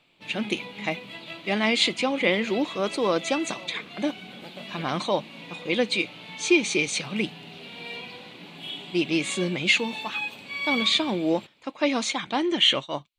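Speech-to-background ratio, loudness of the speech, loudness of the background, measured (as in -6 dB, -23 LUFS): 10.5 dB, -25.5 LUFS, -36.0 LUFS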